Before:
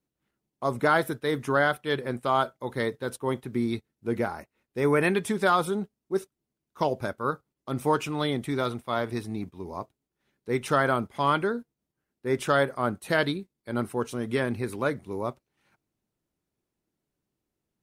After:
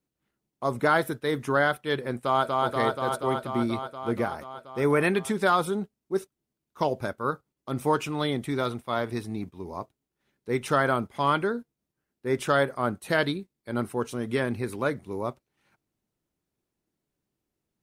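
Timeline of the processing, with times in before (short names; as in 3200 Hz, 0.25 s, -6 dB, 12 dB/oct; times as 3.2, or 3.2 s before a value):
2.19–2.66 echo throw 0.24 s, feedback 80%, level -2 dB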